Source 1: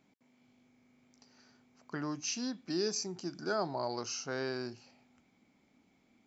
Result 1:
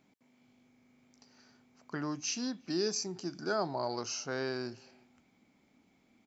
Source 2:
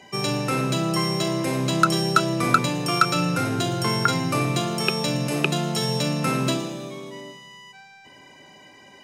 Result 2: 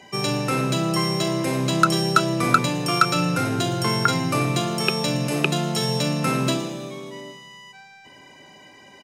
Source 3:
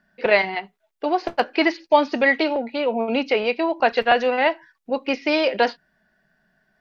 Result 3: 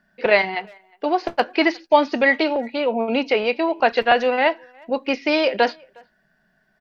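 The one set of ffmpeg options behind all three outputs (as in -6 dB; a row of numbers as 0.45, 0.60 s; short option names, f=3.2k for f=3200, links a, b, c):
-filter_complex "[0:a]asplit=2[a][b];[b]adelay=360,highpass=300,lowpass=3.4k,asoftclip=type=hard:threshold=-11dB,volume=-28dB[c];[a][c]amix=inputs=2:normalize=0,volume=1dB"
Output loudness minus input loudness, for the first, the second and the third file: +1.0, +1.0, +1.0 LU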